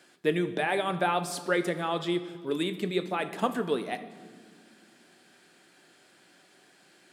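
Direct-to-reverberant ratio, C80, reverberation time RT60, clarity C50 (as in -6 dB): 11.0 dB, 14.5 dB, 1.8 s, 13.0 dB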